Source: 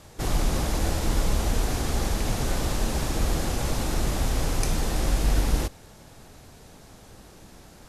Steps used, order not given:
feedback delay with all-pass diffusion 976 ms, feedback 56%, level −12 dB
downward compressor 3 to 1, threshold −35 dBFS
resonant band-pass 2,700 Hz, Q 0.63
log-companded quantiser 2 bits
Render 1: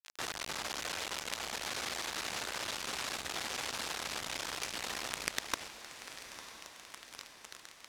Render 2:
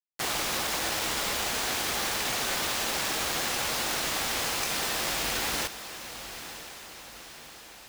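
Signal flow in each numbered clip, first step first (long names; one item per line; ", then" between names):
log-companded quantiser, then resonant band-pass, then downward compressor, then feedback delay with all-pass diffusion
resonant band-pass, then downward compressor, then log-companded quantiser, then feedback delay with all-pass diffusion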